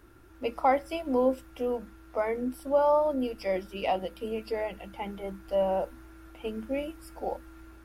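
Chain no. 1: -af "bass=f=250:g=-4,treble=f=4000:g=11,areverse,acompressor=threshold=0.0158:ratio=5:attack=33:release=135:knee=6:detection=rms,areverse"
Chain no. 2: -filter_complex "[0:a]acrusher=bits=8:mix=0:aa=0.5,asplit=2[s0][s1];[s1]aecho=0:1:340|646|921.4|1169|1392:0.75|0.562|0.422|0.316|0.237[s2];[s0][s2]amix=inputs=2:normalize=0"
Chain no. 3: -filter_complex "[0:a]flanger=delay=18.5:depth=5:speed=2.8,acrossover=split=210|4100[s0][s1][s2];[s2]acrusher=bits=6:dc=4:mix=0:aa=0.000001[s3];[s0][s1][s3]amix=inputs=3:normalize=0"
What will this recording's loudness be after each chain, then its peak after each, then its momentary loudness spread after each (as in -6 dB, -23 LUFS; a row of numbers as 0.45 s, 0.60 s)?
-39.0 LUFS, -27.5 LUFS, -33.0 LUFS; -24.0 dBFS, -12.5 dBFS, -13.0 dBFS; 7 LU, 9 LU, 14 LU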